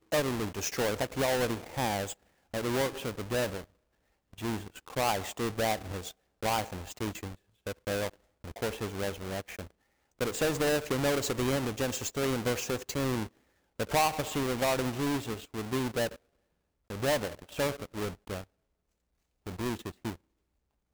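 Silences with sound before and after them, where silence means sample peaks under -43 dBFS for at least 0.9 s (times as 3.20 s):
18.44–19.47 s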